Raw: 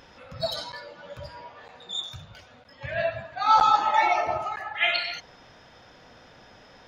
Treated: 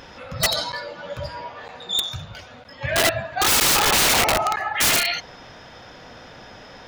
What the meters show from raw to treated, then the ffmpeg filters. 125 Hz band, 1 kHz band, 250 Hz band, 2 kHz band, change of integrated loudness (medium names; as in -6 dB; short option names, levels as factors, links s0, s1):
+10.0 dB, -1.5 dB, +13.5 dB, +6.5 dB, +5.5 dB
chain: -af "aeval=exprs='(mod(11.9*val(0)+1,2)-1)/11.9':c=same,volume=2.82"